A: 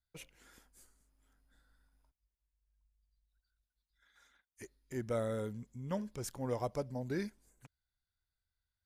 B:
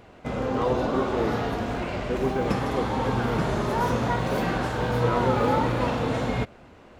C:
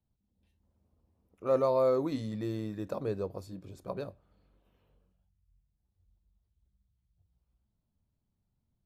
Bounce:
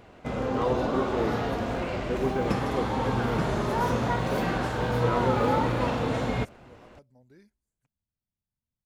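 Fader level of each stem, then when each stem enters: -19.0 dB, -1.5 dB, -12.5 dB; 0.20 s, 0.00 s, 0.00 s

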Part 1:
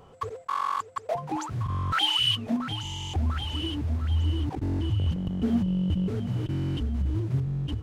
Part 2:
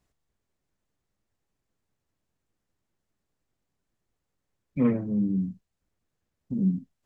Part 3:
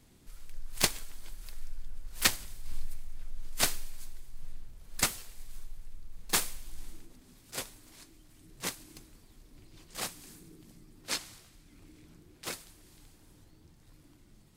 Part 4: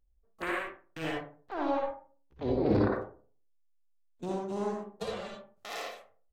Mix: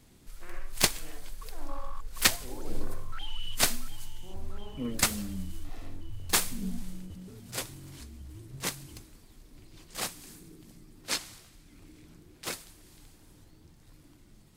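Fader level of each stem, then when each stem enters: -19.0 dB, -12.5 dB, +2.5 dB, -16.0 dB; 1.20 s, 0.00 s, 0.00 s, 0.00 s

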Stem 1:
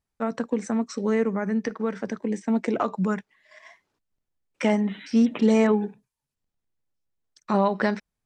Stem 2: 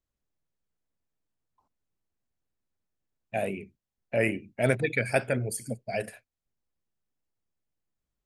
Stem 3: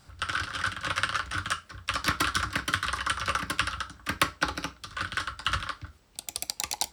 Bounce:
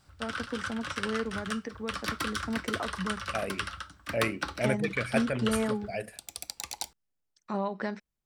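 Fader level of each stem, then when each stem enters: -10.0 dB, -4.0 dB, -6.5 dB; 0.00 s, 0.00 s, 0.00 s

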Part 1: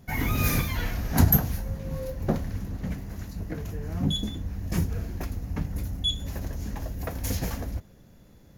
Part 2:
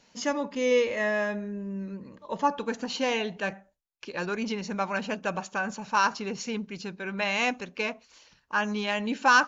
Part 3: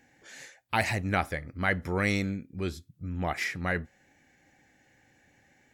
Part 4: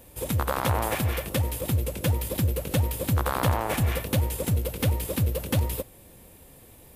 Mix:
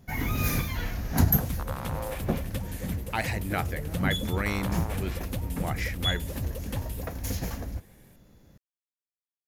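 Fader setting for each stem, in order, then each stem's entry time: -2.5 dB, mute, -3.0 dB, -10.0 dB; 0.00 s, mute, 2.40 s, 1.20 s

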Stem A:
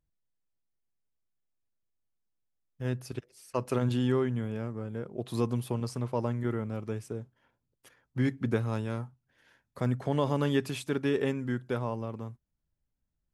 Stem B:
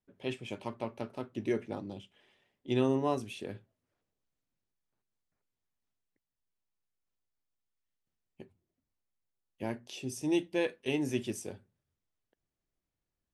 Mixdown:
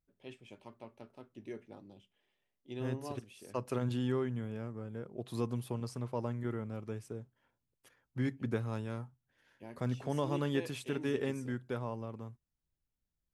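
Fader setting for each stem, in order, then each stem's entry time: -6.0 dB, -13.0 dB; 0.00 s, 0.00 s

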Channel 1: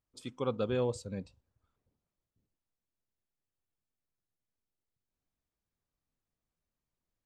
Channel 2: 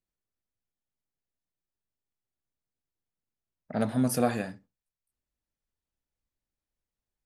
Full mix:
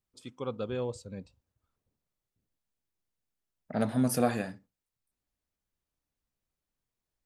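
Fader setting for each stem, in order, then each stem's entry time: -2.5 dB, -1.0 dB; 0.00 s, 0.00 s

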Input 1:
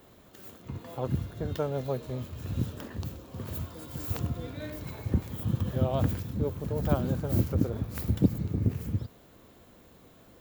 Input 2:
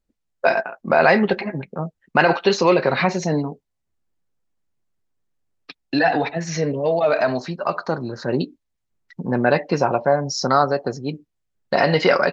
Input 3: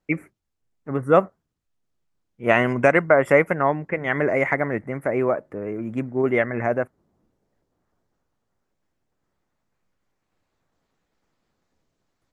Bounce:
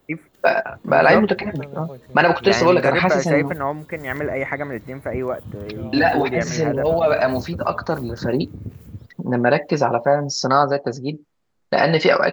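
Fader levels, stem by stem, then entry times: -6.0 dB, +1.0 dB, -3.0 dB; 0.00 s, 0.00 s, 0.00 s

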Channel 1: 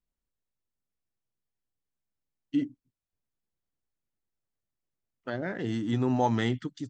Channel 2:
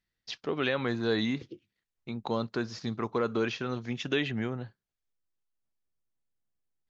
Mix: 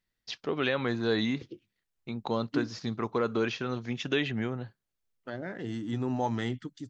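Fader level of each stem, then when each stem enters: -4.5 dB, +0.5 dB; 0.00 s, 0.00 s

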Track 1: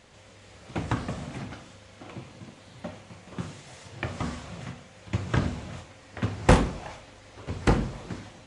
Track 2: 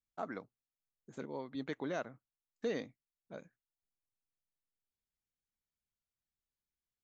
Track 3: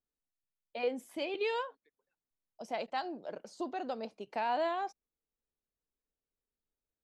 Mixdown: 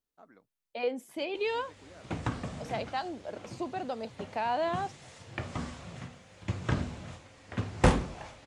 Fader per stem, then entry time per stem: -4.5 dB, -16.0 dB, +2.0 dB; 1.35 s, 0.00 s, 0.00 s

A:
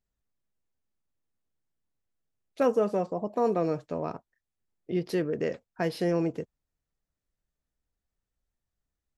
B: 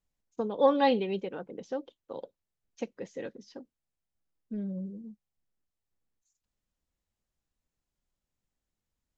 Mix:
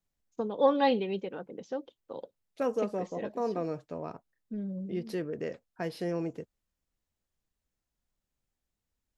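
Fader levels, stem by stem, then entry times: -6.0 dB, -1.0 dB; 0.00 s, 0.00 s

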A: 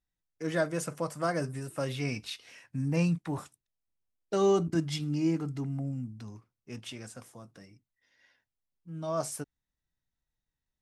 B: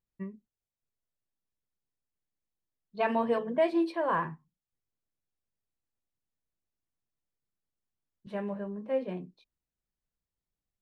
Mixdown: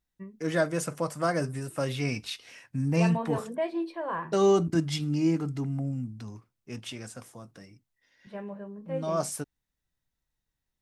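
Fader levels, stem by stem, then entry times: +3.0 dB, -4.0 dB; 0.00 s, 0.00 s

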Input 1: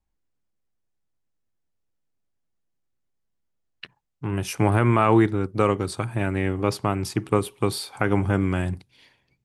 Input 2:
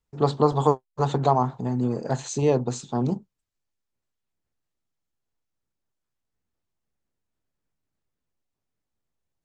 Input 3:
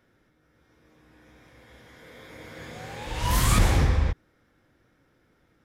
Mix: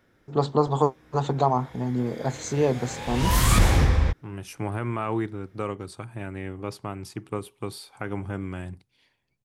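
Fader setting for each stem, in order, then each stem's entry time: -10.0 dB, -1.5 dB, +2.0 dB; 0.00 s, 0.15 s, 0.00 s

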